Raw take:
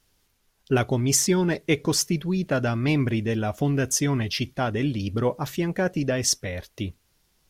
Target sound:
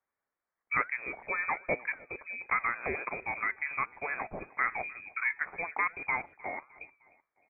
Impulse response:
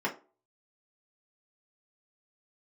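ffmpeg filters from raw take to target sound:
-filter_complex "[0:a]highpass=820,afwtdn=0.0112,asplit=2[link_01][link_02];[link_02]acompressor=threshold=-38dB:ratio=6,volume=1dB[link_03];[link_01][link_03]amix=inputs=2:normalize=0,flanger=delay=4.6:depth=3.8:regen=-89:speed=1.4:shape=sinusoidal,asplit=2[link_04][link_05];[link_05]aecho=0:1:306|612|918:0.0708|0.0368|0.0191[link_06];[link_04][link_06]amix=inputs=2:normalize=0,lowpass=frequency=2300:width_type=q:width=0.5098,lowpass=frequency=2300:width_type=q:width=0.6013,lowpass=frequency=2300:width_type=q:width=0.9,lowpass=frequency=2300:width_type=q:width=2.563,afreqshift=-2700,volume=3dB"

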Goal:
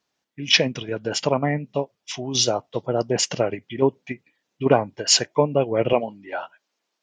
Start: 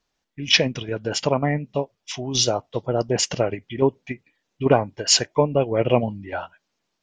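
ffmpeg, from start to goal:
ffmpeg -i in.wav -af "asetnsamples=nb_out_samples=441:pad=0,asendcmd='5.93 highpass f 330',highpass=120" out.wav

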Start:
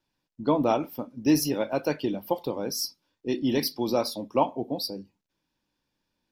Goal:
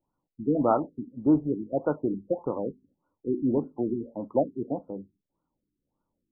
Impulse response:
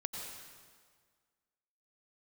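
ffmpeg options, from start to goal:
-af "lowpass=frequency=2000:width_type=q:width=4.9,afftfilt=real='re*lt(b*sr/1024,400*pow(1500/400,0.5+0.5*sin(2*PI*1.7*pts/sr)))':imag='im*lt(b*sr/1024,400*pow(1500/400,0.5+0.5*sin(2*PI*1.7*pts/sr)))':win_size=1024:overlap=0.75"

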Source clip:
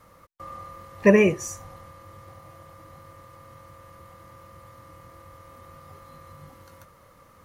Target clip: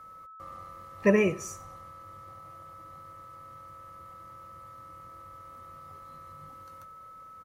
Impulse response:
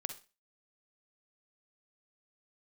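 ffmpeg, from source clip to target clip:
-af "aecho=1:1:93|186|279:0.0944|0.0378|0.0151,aeval=exprs='val(0)+0.01*sin(2*PI*1300*n/s)':channel_layout=same,volume=-6dB"

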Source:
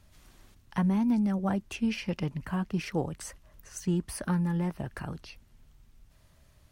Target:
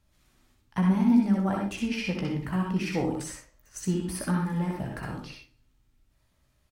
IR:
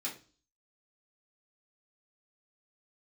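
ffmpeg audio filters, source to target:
-filter_complex "[0:a]aecho=1:1:16|60:0.376|0.355,agate=range=-10dB:threshold=-47dB:ratio=16:detection=peak,asplit=2[link_01][link_02];[1:a]atrim=start_sample=2205,adelay=61[link_03];[link_02][link_03]afir=irnorm=-1:irlink=0,volume=-2.5dB[link_04];[link_01][link_04]amix=inputs=2:normalize=0"

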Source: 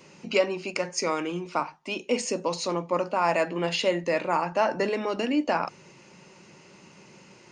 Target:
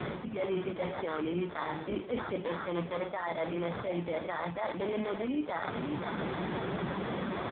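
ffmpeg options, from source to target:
ffmpeg -i in.wav -filter_complex "[0:a]aeval=exprs='val(0)+0.5*0.02*sgn(val(0))':channel_layout=same,asplit=2[link_01][link_02];[link_02]alimiter=limit=-21.5dB:level=0:latency=1:release=49,volume=2dB[link_03];[link_01][link_03]amix=inputs=2:normalize=0,aecho=1:1:535:0.2,areverse,acompressor=threshold=-30dB:ratio=16,areverse,acrusher=samples=16:mix=1:aa=0.000001,aeval=exprs='val(0)+0.000708*(sin(2*PI*60*n/s)+sin(2*PI*2*60*n/s)/2+sin(2*PI*3*60*n/s)/3+sin(2*PI*4*60*n/s)/4+sin(2*PI*5*60*n/s)/5)':channel_layout=same,acontrast=42,volume=-4.5dB" -ar 8000 -c:a libopencore_amrnb -b:a 5150 out.amr

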